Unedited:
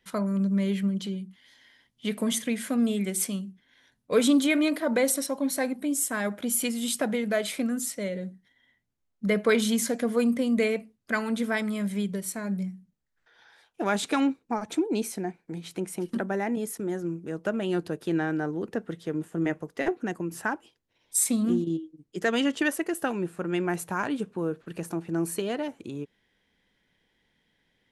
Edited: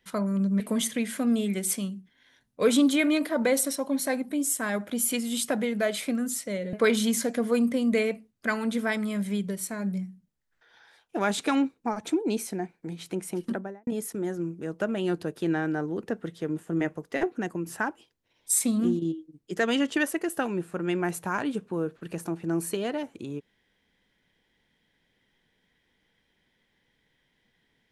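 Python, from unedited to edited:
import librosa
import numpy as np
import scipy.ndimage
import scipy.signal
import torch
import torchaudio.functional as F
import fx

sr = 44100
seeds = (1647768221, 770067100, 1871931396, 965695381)

y = fx.studio_fade_out(x, sr, start_s=16.09, length_s=0.43)
y = fx.edit(y, sr, fx.cut(start_s=0.6, length_s=1.51),
    fx.cut(start_s=8.24, length_s=1.14), tone=tone)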